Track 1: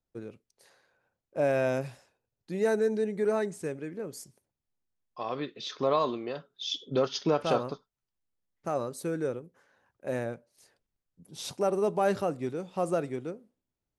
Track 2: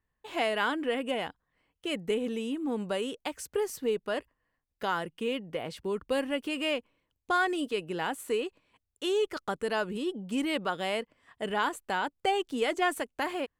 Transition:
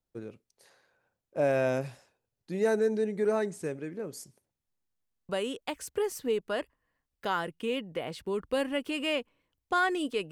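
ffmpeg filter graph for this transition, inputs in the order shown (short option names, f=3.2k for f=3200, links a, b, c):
-filter_complex "[0:a]apad=whole_dur=10.31,atrim=end=10.31,asplit=4[a][b][c][d];[a]atrim=end=5.142[e];[b]atrim=start=5.088:end=5.142[f];[c]atrim=start=5.088:end=5.142[g];[d]atrim=start=5.088:end=5.142[h];[1:a]atrim=start=2.868:end=7.89[i];[e][f]acrossfade=d=0.004:c1=hsin:c2=hsin[j];[j][g]acrossfade=d=0.004:c1=hsin:c2=hsin[k];[k][h]acrossfade=d=0.004:c1=hsin:c2=hsin[l];[l][i]acrossfade=d=0.004:c1=hsin:c2=hsin"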